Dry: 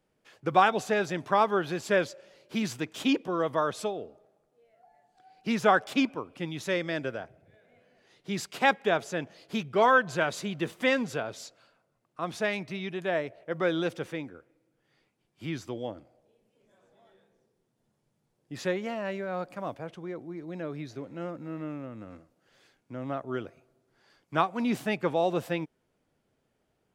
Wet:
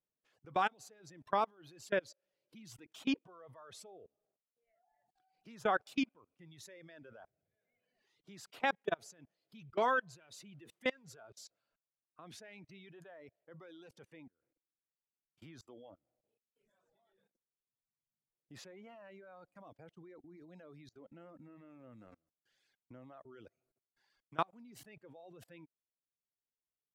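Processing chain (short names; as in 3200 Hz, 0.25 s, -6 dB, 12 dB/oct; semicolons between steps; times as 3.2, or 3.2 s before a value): level quantiser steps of 23 dB; reverb removal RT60 1.9 s; gain -6.5 dB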